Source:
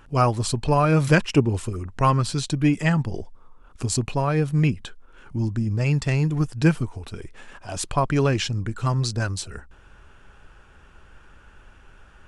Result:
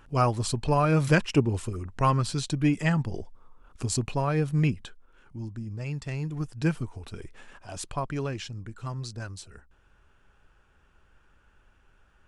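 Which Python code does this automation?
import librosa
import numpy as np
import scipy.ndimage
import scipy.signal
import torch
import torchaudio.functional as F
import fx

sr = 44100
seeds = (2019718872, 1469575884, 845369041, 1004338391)

y = fx.gain(x, sr, db=fx.line((4.7, -4.0), (5.37, -12.0), (5.98, -12.0), (7.23, -4.0), (8.38, -12.0)))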